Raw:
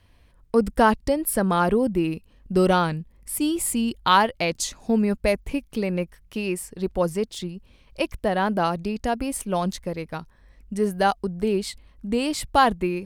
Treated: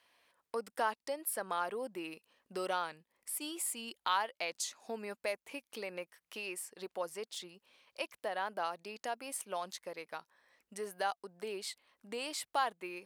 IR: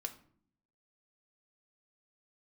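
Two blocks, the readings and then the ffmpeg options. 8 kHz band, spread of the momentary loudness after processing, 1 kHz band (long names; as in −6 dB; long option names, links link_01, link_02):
−10.0 dB, 11 LU, −14.0 dB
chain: -af "highpass=640,acompressor=threshold=-42dB:ratio=1.5,volume=-4dB"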